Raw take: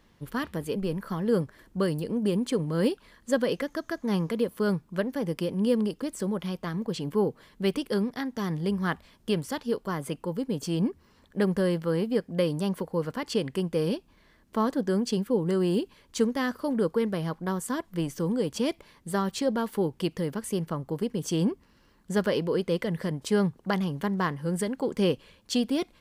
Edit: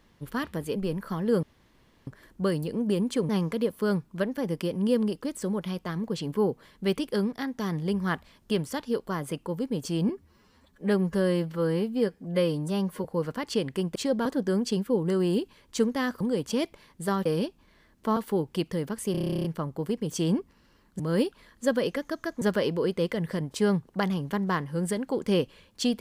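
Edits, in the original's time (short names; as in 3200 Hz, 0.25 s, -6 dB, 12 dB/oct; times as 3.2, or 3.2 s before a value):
1.43 insert room tone 0.64 s
2.65–4.07 move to 22.12
10.87–12.84 stretch 1.5×
13.75–14.66 swap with 19.32–19.62
16.61–18.27 cut
20.57 stutter 0.03 s, 12 plays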